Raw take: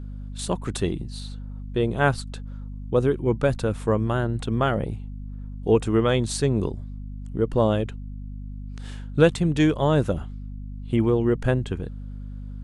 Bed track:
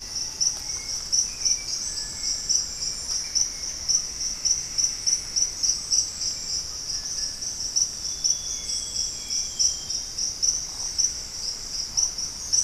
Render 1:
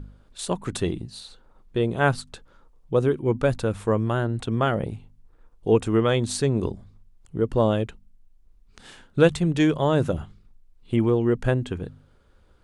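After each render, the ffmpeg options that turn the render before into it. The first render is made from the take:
-af "bandreject=f=50:t=h:w=4,bandreject=f=100:t=h:w=4,bandreject=f=150:t=h:w=4,bandreject=f=200:t=h:w=4,bandreject=f=250:t=h:w=4"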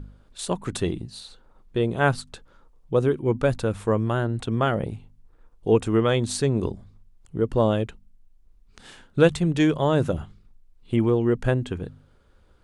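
-af anull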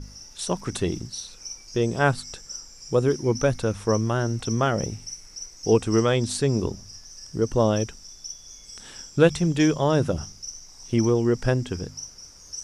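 -filter_complex "[1:a]volume=0.188[s0];[0:a][s0]amix=inputs=2:normalize=0"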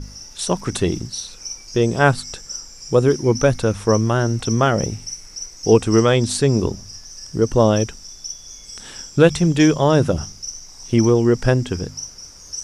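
-af "volume=2,alimiter=limit=0.794:level=0:latency=1"

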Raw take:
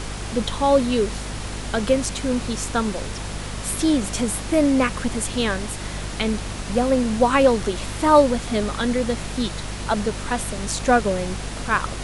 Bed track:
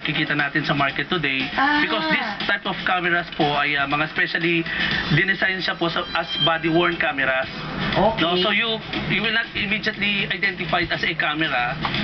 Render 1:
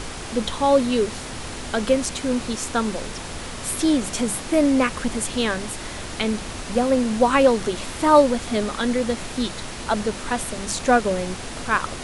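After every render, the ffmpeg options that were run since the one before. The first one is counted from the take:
-af "bandreject=f=50:t=h:w=6,bandreject=f=100:t=h:w=6,bandreject=f=150:t=h:w=6,bandreject=f=200:t=h:w=6"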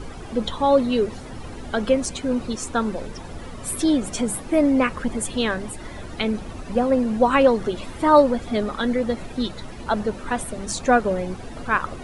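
-af "afftdn=nr=14:nf=-33"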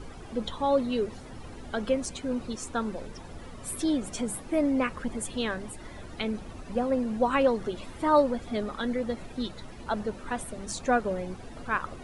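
-af "volume=0.422"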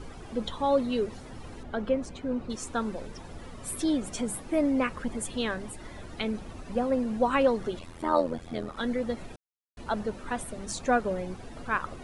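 -filter_complex "[0:a]asettb=1/sr,asplit=3[s0][s1][s2];[s0]atrim=end=1.634[s3];[s1]atrim=start=1.63:end=2.5,asetpts=PTS-STARTPTS,afade=t=in:d=0.004:c=qsin,afade=t=out:st=0.866:d=0.004:c=qsin,lowpass=f=1700:p=1[s4];[s2]atrim=start=2.496[s5];[s3][s4]acrossfade=d=0.004:c1=hsin:c2=qsin[s6];[s6][s5]acrossfade=d=0.004:c1=qsin:c2=hsin,asettb=1/sr,asplit=3[s7][s8][s9];[s7]atrim=end=7.794[s10];[s8]atrim=start=7.79:end=8.77,asetpts=PTS-STARTPTS,afade=t=in:d=0.004:c=qsin,afade=t=out:st=0.976:d=0.004:c=qsin,tremolo=f=84:d=0.857[s11];[s9]atrim=start=8.766[s12];[s10][s11]acrossfade=d=0.004:c1=hsin:c2=qsin[s13];[s13][s12]acrossfade=d=0.004:c1=qsin:c2=hsin,asplit=3[s14][s15][s16];[s14]atrim=end=9.36,asetpts=PTS-STARTPTS,afade=t=out:st=9.356:d=0.004:c=hsin[s17];[s15]atrim=start=9.36:end=9.77,asetpts=PTS-STARTPTS,volume=0[s18];[s16]atrim=start=9.77,asetpts=PTS-STARTPTS,afade=t=in:d=0.004:c=hsin[s19];[s17][s18][s19]concat=n=3:v=0:a=1"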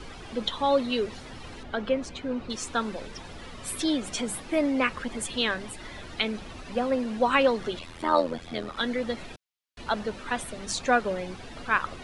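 -filter_complex "[0:a]acrossover=split=200|4400[s0][s1][s2];[s0]asoftclip=type=hard:threshold=0.01[s3];[s1]crystalizer=i=6.5:c=0[s4];[s3][s4][s2]amix=inputs=3:normalize=0"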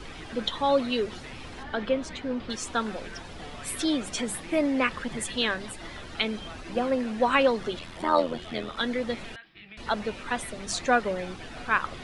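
-filter_complex "[1:a]volume=0.0531[s0];[0:a][s0]amix=inputs=2:normalize=0"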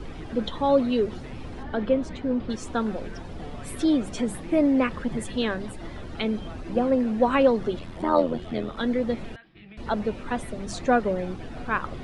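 -af "tiltshelf=f=900:g=7"

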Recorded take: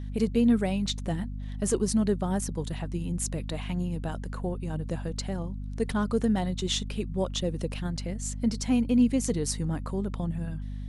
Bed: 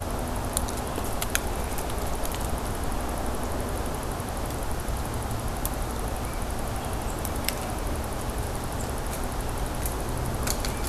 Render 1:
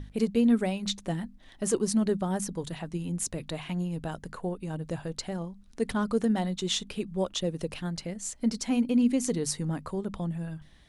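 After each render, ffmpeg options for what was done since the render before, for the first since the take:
-af "bandreject=f=50:t=h:w=6,bandreject=f=100:t=h:w=6,bandreject=f=150:t=h:w=6,bandreject=f=200:t=h:w=6,bandreject=f=250:t=h:w=6"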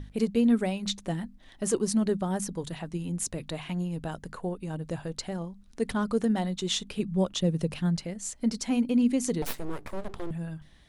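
-filter_complex "[0:a]asettb=1/sr,asplit=3[s0][s1][s2];[s0]atrim=end=6.994[s3];[s1]atrim=start=6.99:end=7.97,asetpts=PTS-STARTPTS,afade=t=in:d=0.004:c=qsin,afade=t=out:st=0.976:d=0.004:c=qsin,equalizer=f=160:w=1.4:g=8[s4];[s2]atrim=start=7.966[s5];[s3][s4]acrossfade=d=0.004:c1=hsin:c2=qsin[s6];[s6][s5]acrossfade=d=0.004:c1=qsin:c2=hsin,asettb=1/sr,asplit=3[s7][s8][s9];[s7]atrim=end=9.424[s10];[s8]atrim=start=9.42:end=10.31,asetpts=PTS-STARTPTS,afade=t=in:d=0.004:c=qsin,afade=t=out:st=0.886:d=0.004:c=qsin,aeval=exprs='abs(val(0))':c=same[s11];[s9]atrim=start=10.306[s12];[s10][s11]acrossfade=d=0.004:c1=hsin:c2=qsin[s13];[s13][s12]acrossfade=d=0.004:c1=qsin:c2=hsin"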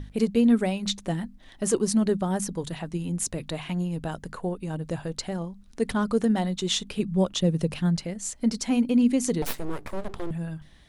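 -af "volume=1.41"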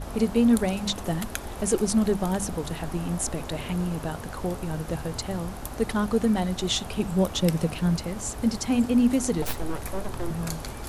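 -filter_complex "[1:a]volume=0.447[s0];[0:a][s0]amix=inputs=2:normalize=0"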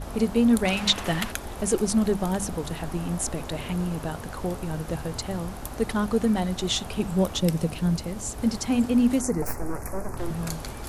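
-filter_complex "[0:a]asettb=1/sr,asplit=3[s0][s1][s2];[s0]atrim=end=0.654[s3];[s1]atrim=start=0.65:end=1.32,asetpts=PTS-STARTPTS,afade=t=in:d=0.004:c=qsin,afade=t=out:st=0.666:d=0.004:c=qsin,equalizer=f=2400:t=o:w=2.2:g=11.5[s4];[s2]atrim=start=1.316[s5];[s3][s4]acrossfade=d=0.004:c1=hsin:c2=qsin[s6];[s6][s5]acrossfade=d=0.004:c1=qsin:c2=hsin,asettb=1/sr,asplit=3[s7][s8][s9];[s7]atrim=end=7.384[s10];[s8]atrim=start=7.38:end=8.38,asetpts=PTS-STARTPTS,afade=t=in:d=0.004:c=qsin,afade=t=out:st=0.996:d=0.004:c=qsin,equalizer=f=1500:t=o:w=2.4:g=-3.5[s11];[s9]atrim=start=8.376[s12];[s10][s11]acrossfade=d=0.004:c1=hsin:c2=qsin[s13];[s13][s12]acrossfade=d=0.004:c1=qsin:c2=hsin,asettb=1/sr,asplit=3[s14][s15][s16];[s14]atrim=end=9.214[s17];[s15]atrim=start=9.21:end=10.17,asetpts=PTS-STARTPTS,afade=t=in:d=0.004:c=qsin,afade=t=out:st=0.956:d=0.004:c=qsin,asuperstop=centerf=3400:order=4:qfactor=1[s18];[s16]atrim=start=10.166[s19];[s17][s18]acrossfade=d=0.004:c1=hsin:c2=qsin[s20];[s20][s19]acrossfade=d=0.004:c1=qsin:c2=hsin"

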